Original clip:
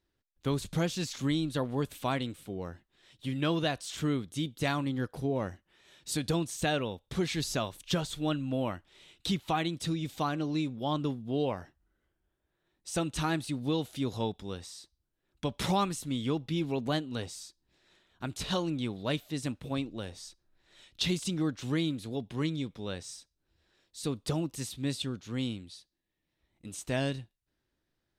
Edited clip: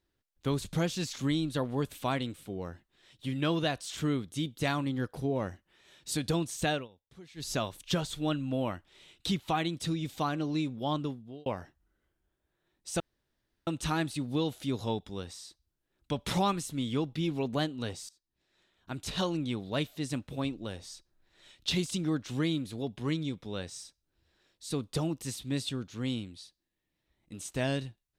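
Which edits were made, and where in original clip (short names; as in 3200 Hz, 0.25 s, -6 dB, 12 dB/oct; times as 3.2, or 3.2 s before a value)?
6.71–7.52 dip -20.5 dB, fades 0.17 s
10.92–11.46 fade out
13 insert room tone 0.67 s
17.42–18.49 fade in, from -20.5 dB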